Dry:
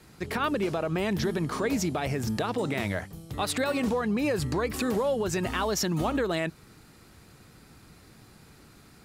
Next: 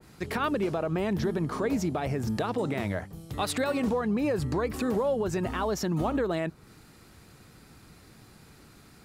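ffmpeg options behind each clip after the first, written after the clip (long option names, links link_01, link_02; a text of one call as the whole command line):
ffmpeg -i in.wav -af "adynamicequalizer=threshold=0.00562:dfrequency=1600:dqfactor=0.7:tfrequency=1600:tqfactor=0.7:attack=5:release=100:ratio=0.375:range=4:mode=cutabove:tftype=highshelf" out.wav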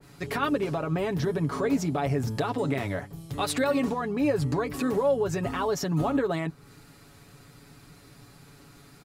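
ffmpeg -i in.wav -af "aecho=1:1:7.1:0.65" out.wav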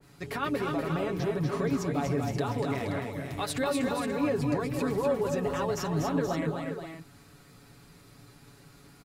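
ffmpeg -i in.wav -af "aecho=1:1:241|258|477|529:0.562|0.316|0.355|0.299,volume=-4.5dB" out.wav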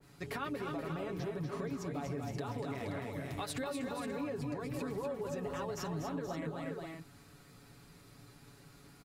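ffmpeg -i in.wav -af "acompressor=threshold=-32dB:ratio=6,volume=-3.5dB" out.wav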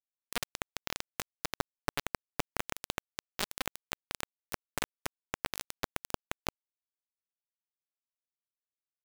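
ffmpeg -i in.wav -af "acrusher=bits=4:mix=0:aa=0.000001,volume=9dB" out.wav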